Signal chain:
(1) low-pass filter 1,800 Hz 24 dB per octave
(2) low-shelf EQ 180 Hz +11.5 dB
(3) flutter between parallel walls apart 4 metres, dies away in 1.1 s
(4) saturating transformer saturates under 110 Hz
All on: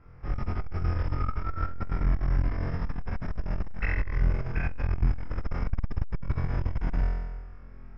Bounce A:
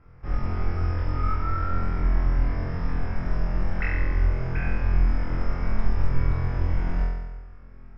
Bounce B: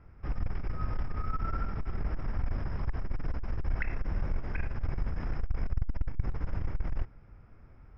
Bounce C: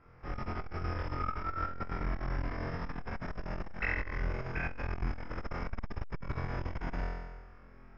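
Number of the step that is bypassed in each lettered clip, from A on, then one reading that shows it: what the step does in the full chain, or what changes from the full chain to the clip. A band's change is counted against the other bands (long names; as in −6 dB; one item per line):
4, 1 kHz band +1.5 dB
3, change in integrated loudness −5.0 LU
2, 125 Hz band −9.5 dB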